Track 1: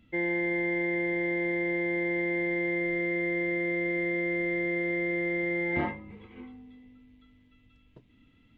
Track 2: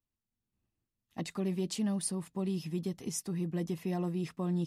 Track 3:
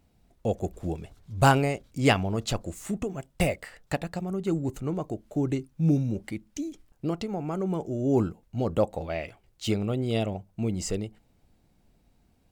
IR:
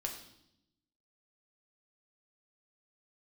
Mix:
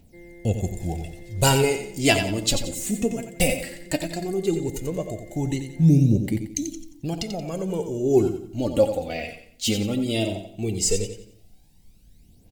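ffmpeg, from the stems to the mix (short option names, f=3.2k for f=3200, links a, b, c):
-filter_complex "[0:a]highshelf=f=2.6k:g=-9.5,volume=-14.5dB[a];[1:a]volume=-15dB[b];[2:a]highshelf=f=3.2k:g=8.5,aphaser=in_gain=1:out_gain=1:delay=4.4:decay=0.64:speed=0.16:type=triangular,volume=0dB,asplit=3[c][d][e];[d]volume=-7.5dB[f];[e]volume=-6dB[g];[3:a]atrim=start_sample=2205[h];[f][h]afir=irnorm=-1:irlink=0[i];[g]aecho=0:1:89|178|267|356|445:1|0.35|0.122|0.0429|0.015[j];[a][b][c][i][j]amix=inputs=5:normalize=0,equalizer=f=1.2k:w=1.4:g=-12.5"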